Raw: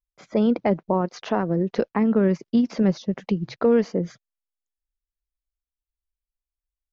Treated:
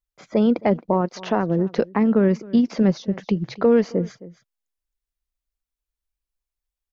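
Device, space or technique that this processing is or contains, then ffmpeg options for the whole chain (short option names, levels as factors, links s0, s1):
ducked delay: -filter_complex "[0:a]asplit=3[s0][s1][s2];[s1]adelay=266,volume=0.501[s3];[s2]apad=whole_len=317099[s4];[s3][s4]sidechaincompress=threshold=0.0178:ratio=6:attack=7.4:release=644[s5];[s0][s5]amix=inputs=2:normalize=0,volume=1.26"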